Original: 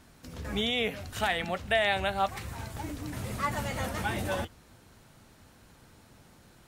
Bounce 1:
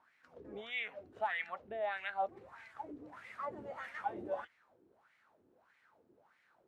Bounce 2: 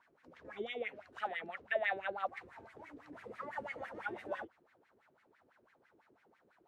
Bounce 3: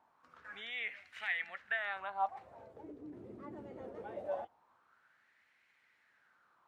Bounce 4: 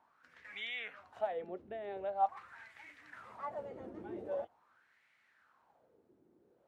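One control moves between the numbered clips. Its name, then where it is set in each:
wah, rate: 1.6, 6, 0.22, 0.44 Hz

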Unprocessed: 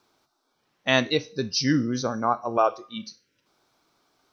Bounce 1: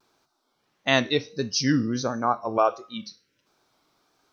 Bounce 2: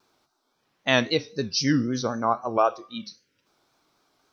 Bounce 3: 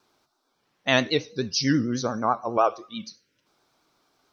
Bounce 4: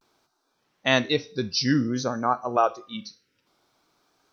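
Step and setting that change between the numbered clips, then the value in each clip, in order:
vibrato, rate: 1.5, 3.8, 9.2, 0.52 Hz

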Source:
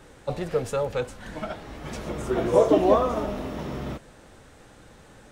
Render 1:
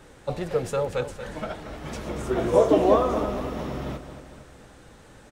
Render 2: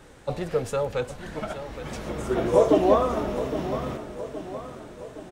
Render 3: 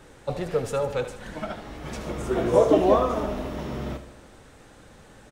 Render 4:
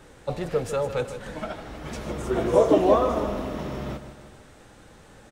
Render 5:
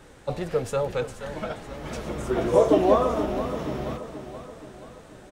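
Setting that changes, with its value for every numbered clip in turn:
feedback echo, time: 231, 817, 76, 155, 478 ms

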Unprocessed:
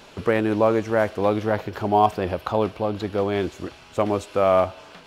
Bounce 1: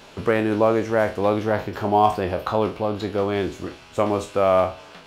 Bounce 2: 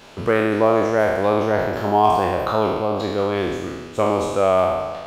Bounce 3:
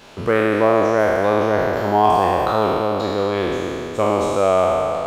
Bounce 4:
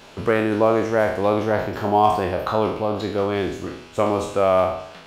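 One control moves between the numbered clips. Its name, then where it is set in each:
spectral trails, RT60: 0.31, 1.44, 3.03, 0.68 s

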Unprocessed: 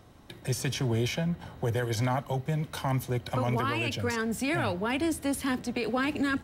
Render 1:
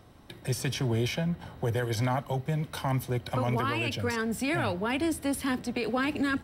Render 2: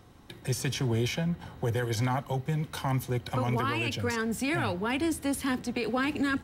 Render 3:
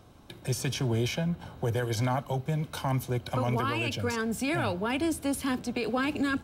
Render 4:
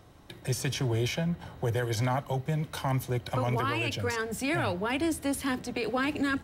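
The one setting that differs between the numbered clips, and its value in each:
notch, frequency: 6700, 620, 1900, 230 Hz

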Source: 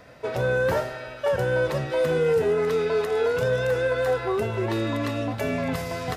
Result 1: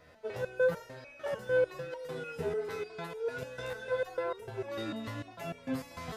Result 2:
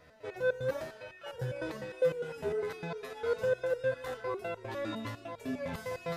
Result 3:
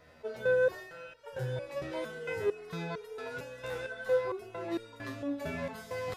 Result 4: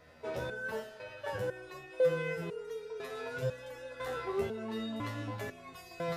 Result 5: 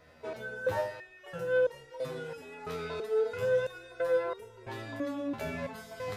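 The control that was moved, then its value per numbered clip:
stepped resonator, rate: 6.7, 9.9, 4.4, 2, 3 Hz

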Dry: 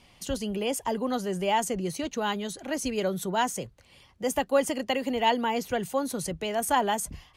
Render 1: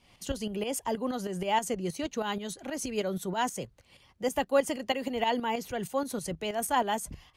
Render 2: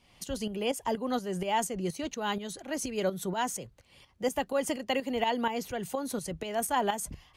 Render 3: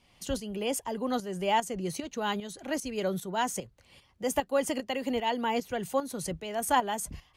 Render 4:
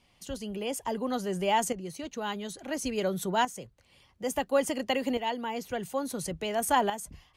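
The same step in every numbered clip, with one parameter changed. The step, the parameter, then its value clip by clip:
tremolo, rate: 6.3, 4.2, 2.5, 0.58 Hz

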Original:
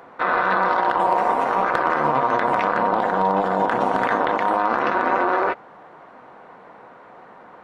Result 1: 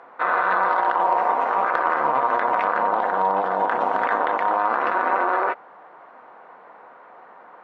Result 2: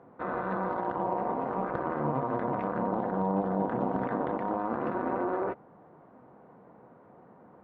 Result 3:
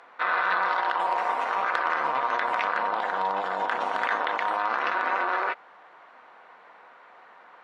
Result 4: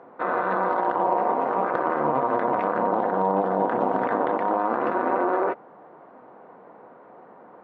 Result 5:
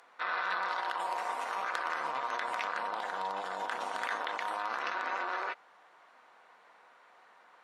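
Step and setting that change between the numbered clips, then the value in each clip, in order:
band-pass, frequency: 1100, 120, 3000, 360, 7900 Hz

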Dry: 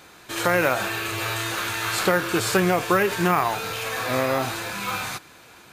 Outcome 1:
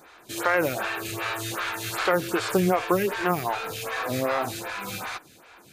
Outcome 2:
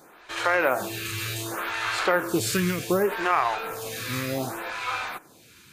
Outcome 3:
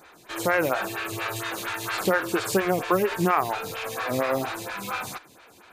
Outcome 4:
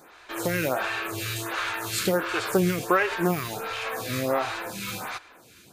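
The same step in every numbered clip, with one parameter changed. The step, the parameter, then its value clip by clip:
photocell phaser, rate: 2.6, 0.67, 4.3, 1.4 Hz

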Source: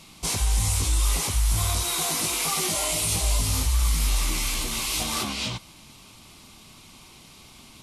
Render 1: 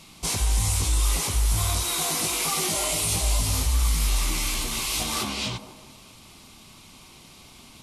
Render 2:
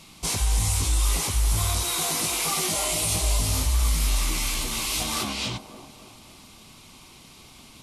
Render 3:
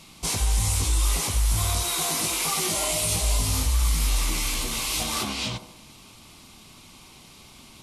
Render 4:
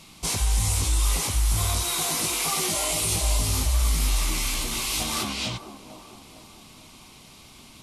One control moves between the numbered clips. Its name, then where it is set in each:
band-limited delay, time: 157, 279, 78, 449 ms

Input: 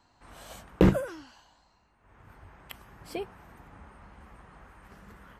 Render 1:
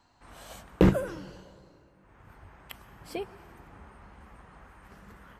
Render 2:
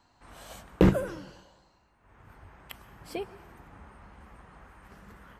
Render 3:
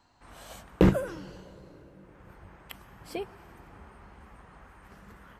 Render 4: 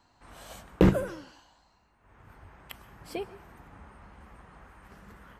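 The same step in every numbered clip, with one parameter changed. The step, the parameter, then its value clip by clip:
plate-style reverb, RT60: 2.4, 1.2, 5.1, 0.54 s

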